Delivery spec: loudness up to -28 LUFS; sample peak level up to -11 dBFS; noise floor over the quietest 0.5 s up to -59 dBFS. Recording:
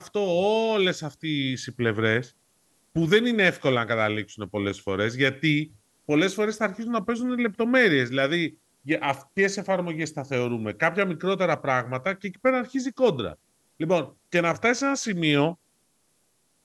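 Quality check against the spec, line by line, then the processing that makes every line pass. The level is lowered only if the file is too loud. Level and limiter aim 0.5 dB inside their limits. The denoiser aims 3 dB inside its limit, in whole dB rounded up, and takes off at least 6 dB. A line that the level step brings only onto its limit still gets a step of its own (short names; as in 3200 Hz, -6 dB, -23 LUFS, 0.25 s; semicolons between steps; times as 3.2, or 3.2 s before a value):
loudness -25.0 LUFS: fail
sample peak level -7.0 dBFS: fail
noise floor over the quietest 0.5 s -68 dBFS: OK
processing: gain -3.5 dB; limiter -11.5 dBFS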